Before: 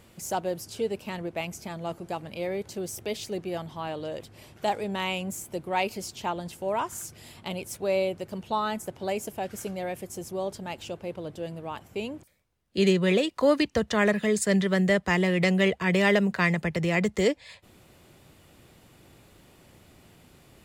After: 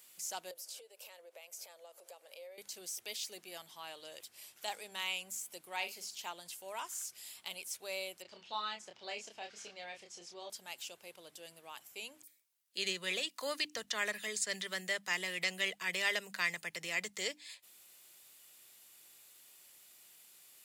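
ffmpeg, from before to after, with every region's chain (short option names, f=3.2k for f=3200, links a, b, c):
-filter_complex "[0:a]asettb=1/sr,asplit=3[a][b][c];[a]atrim=end=0.514[d];[b]atrim=start=0.51:end=2.58,asetpts=PTS-STARTPTS,afade=t=in:d=0.004:c=qsin,afade=t=out:st=2.066:d=0.004:c=qsin,acompressor=threshold=-41dB:ratio=16:attack=3.2:release=140:knee=1:detection=peak,highpass=f=530:t=q:w=6.4[e];[c]atrim=start=2.576[f];[d][e]acrossfade=d=0.004:c1=hsin:c2=qsin[g];[g][f]acrossfade=d=0.004:c1=qsin:c2=hsin,asettb=1/sr,asplit=3[h][i][j];[h]atrim=end=5.764[k];[i]atrim=start=5.76:end=6.19,asetpts=PTS-STARTPTS,afade=t=in:d=0.004:c=qsin,afade=t=out:st=0.426:d=0.004:c=qsin,highshelf=f=5.2k:g=-9,asplit=2[l][m];[m]adelay=46,volume=-10.5dB[n];[l][n]amix=inputs=2:normalize=0,atrim=end_sample=18963[o];[j]atrim=start=6.186[p];[k][o]acrossfade=d=0.004:c1=hsin:c2=qsin[q];[q][p]acrossfade=d=0.004:c1=qsin:c2=hsin,asettb=1/sr,asplit=3[r][s][t];[r]atrim=end=8.224[u];[s]atrim=start=8.22:end=10.5,asetpts=PTS-STARTPTS,afade=t=in:d=0.004:c=qsin,afade=t=out:st=2.276:d=0.004:c=qsin,lowpass=f=5.1k:w=0.5412,lowpass=f=5.1k:w=1.3066,asplit=2[v][w];[w]adelay=29,volume=-4.5dB[x];[v][x]amix=inputs=2:normalize=0,atrim=end_sample=100548[y];[t]atrim=start=10.496[z];[u][y]acrossfade=d=0.004:c1=hsin:c2=qsin[aa];[aa][z]acrossfade=d=0.004:c1=qsin:c2=hsin,bandreject=f=50:t=h:w=6,bandreject=f=100:t=h:w=6,bandreject=f=150:t=h:w=6,bandreject=f=200:t=h:w=6,bandreject=f=250:t=h:w=6,bandreject=f=300:t=h:w=6,acrossover=split=6300[ab][ac];[ac]acompressor=threshold=-52dB:ratio=4:attack=1:release=60[ad];[ab][ad]amix=inputs=2:normalize=0,aderivative,volume=3.5dB"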